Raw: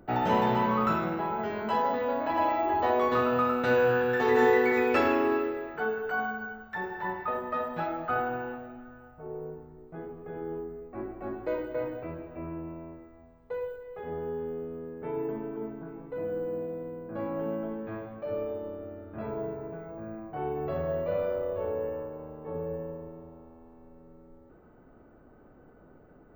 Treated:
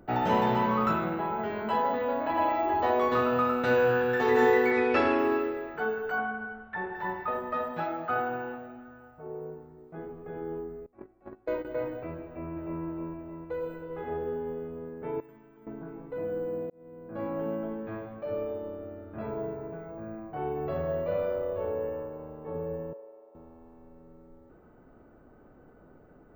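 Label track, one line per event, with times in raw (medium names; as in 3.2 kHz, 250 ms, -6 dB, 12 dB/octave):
0.910000	2.550000	peaking EQ 5.6 kHz -11 dB 0.39 oct
4.710000	5.190000	low-pass 5.8 kHz 24 dB/octave
6.180000	6.950000	low-pass 3.1 kHz 24 dB/octave
7.710000	9.960000	high-pass 110 Hz 6 dB/octave
10.860000	11.650000	gate -34 dBFS, range -22 dB
12.250000	12.820000	echo throw 310 ms, feedback 60%, level 0 dB
13.540000	14.090000	reverb throw, RT60 2.7 s, DRR 1 dB
15.200000	15.670000	amplifier tone stack bass-middle-treble 5-5-5
16.700000	17.250000	fade in
22.930000	23.350000	ladder high-pass 430 Hz, resonance 50%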